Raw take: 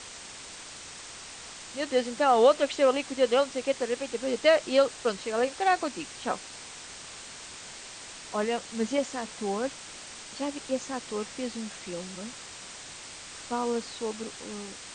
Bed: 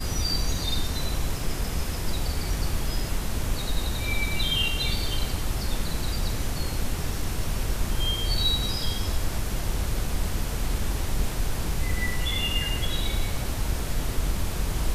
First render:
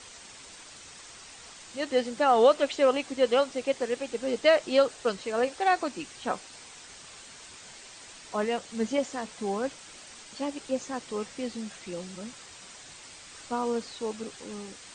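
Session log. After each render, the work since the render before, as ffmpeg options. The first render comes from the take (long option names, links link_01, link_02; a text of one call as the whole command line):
ffmpeg -i in.wav -af "afftdn=noise_reduction=6:noise_floor=-44" out.wav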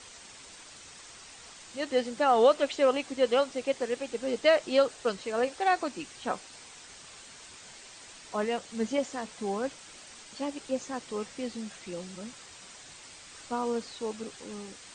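ffmpeg -i in.wav -af "volume=-1.5dB" out.wav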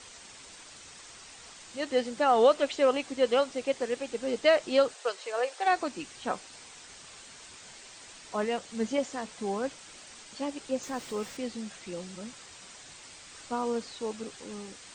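ffmpeg -i in.wav -filter_complex "[0:a]asplit=3[link_01][link_02][link_03];[link_01]afade=type=out:start_time=4.93:duration=0.02[link_04];[link_02]highpass=frequency=450:width=0.5412,highpass=frequency=450:width=1.3066,afade=type=in:start_time=4.93:duration=0.02,afade=type=out:start_time=5.65:duration=0.02[link_05];[link_03]afade=type=in:start_time=5.65:duration=0.02[link_06];[link_04][link_05][link_06]amix=inputs=3:normalize=0,asettb=1/sr,asplit=3[link_07][link_08][link_09];[link_07]atrim=end=10.834[link_10];[link_08]atrim=start=10.83:end=11.37,asetpts=PTS-STARTPTS,afade=type=in:duration=0.004:curve=qsin,afade=type=out:start_time=0.536:duration=0.004:curve=qsin,aeval=exprs='val(0)+0.5*0.00473*sgn(val(0))':channel_layout=same[link_11];[link_09]atrim=start=11.366[link_12];[link_10][link_11]acrossfade=duration=0.004:curve1=hsin:curve2=qsin[link_13];[link_13][link_12]acrossfade=duration=0.004:curve1=qsin:curve2=hsin" out.wav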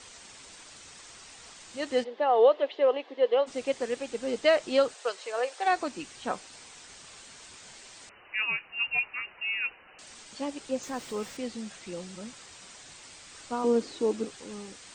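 ffmpeg -i in.wav -filter_complex "[0:a]asplit=3[link_01][link_02][link_03];[link_01]afade=type=out:start_time=2.03:duration=0.02[link_04];[link_02]highpass=frequency=350:width=0.5412,highpass=frequency=350:width=1.3066,equalizer=frequency=440:width_type=q:width=4:gain=4,equalizer=frequency=1400:width_type=q:width=4:gain=-10,equalizer=frequency=2400:width_type=q:width=4:gain=-8,lowpass=frequency=3200:width=0.5412,lowpass=frequency=3200:width=1.3066,afade=type=in:start_time=2.03:duration=0.02,afade=type=out:start_time=3.46:duration=0.02[link_05];[link_03]afade=type=in:start_time=3.46:duration=0.02[link_06];[link_04][link_05][link_06]amix=inputs=3:normalize=0,asettb=1/sr,asplit=3[link_07][link_08][link_09];[link_07]atrim=end=8.094[link_10];[link_08]atrim=start=8.09:end=9.99,asetpts=PTS-STARTPTS,afade=type=in:duration=0.004:curve=qsin,afade=type=out:start_time=1.896:duration=0.004:curve=qsin,lowpass=frequency=2600:width_type=q:width=0.5098,lowpass=frequency=2600:width_type=q:width=0.6013,lowpass=frequency=2600:width_type=q:width=0.9,lowpass=frequency=2600:width_type=q:width=2.563,afreqshift=-3000[link_11];[link_09]atrim=start=9.986[link_12];[link_10][link_11]acrossfade=duration=0.004:curve1=hsin:curve2=qsin[link_13];[link_13][link_12]acrossfade=duration=0.004:curve1=qsin:curve2=hsin,asettb=1/sr,asplit=3[link_14][link_15][link_16];[link_14]atrim=end=13.644[link_17];[link_15]atrim=start=13.64:end=14.25,asetpts=PTS-STARTPTS,afade=type=in:duration=0.004:curve=qsin,afade=type=out:start_time=0.606:duration=0.004:curve=qsin,equalizer=frequency=330:width=1.5:gain=15[link_18];[link_16]atrim=start=14.246[link_19];[link_17][link_18]acrossfade=duration=0.004:curve1=hsin:curve2=qsin[link_20];[link_20][link_19]acrossfade=duration=0.004:curve1=qsin:curve2=hsin" out.wav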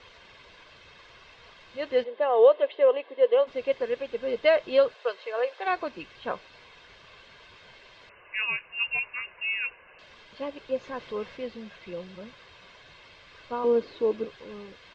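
ffmpeg -i in.wav -af "lowpass=frequency=3700:width=0.5412,lowpass=frequency=3700:width=1.3066,aecho=1:1:1.9:0.47" out.wav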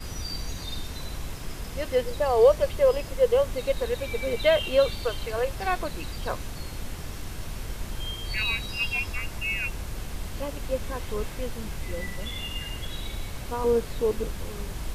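ffmpeg -i in.wav -i bed.wav -filter_complex "[1:a]volume=-7.5dB[link_01];[0:a][link_01]amix=inputs=2:normalize=0" out.wav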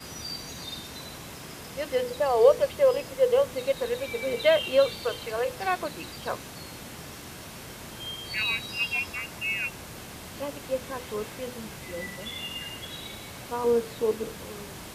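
ffmpeg -i in.wav -af "highpass=140,bandreject=frequency=50:width_type=h:width=6,bandreject=frequency=100:width_type=h:width=6,bandreject=frequency=150:width_type=h:width=6,bandreject=frequency=200:width_type=h:width=6,bandreject=frequency=250:width_type=h:width=6,bandreject=frequency=300:width_type=h:width=6,bandreject=frequency=350:width_type=h:width=6,bandreject=frequency=400:width_type=h:width=6,bandreject=frequency=450:width_type=h:width=6,bandreject=frequency=500:width_type=h:width=6" out.wav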